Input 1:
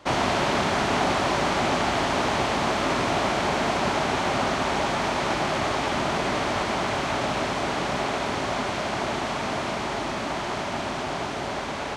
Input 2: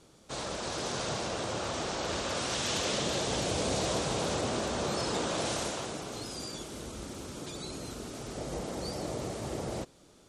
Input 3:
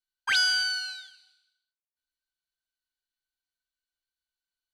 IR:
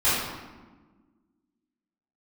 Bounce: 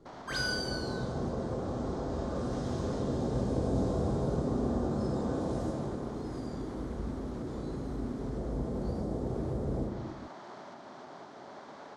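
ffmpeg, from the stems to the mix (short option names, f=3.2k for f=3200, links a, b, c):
-filter_complex "[0:a]alimiter=limit=-20.5dB:level=0:latency=1:release=374,aeval=exprs='sgn(val(0))*max(abs(val(0))-0.00211,0)':c=same,volume=-14.5dB[a];[1:a]tiltshelf=f=800:g=10,volume=-3.5dB,asplit=2[b][c];[c]volume=-18dB[d];[2:a]volume=-10.5dB,asplit=2[e][f];[f]volume=-16.5dB[g];[a][b]amix=inputs=2:normalize=0,highpass=180,lowpass=5.1k,acompressor=threshold=-39dB:ratio=6,volume=0dB[h];[3:a]atrim=start_sample=2205[i];[d][g]amix=inputs=2:normalize=0[j];[j][i]afir=irnorm=-1:irlink=0[k];[e][h][k]amix=inputs=3:normalize=0,equalizer=f=2.6k:t=o:w=0.79:g=-13"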